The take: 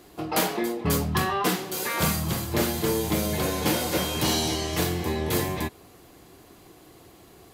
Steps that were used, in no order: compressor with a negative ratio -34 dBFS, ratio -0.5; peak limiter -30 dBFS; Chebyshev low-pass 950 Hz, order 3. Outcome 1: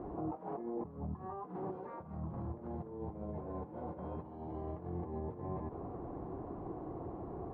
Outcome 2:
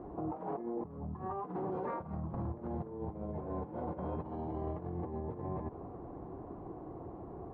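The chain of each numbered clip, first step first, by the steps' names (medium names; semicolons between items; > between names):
compressor with a negative ratio > peak limiter > Chebyshev low-pass; Chebyshev low-pass > compressor with a negative ratio > peak limiter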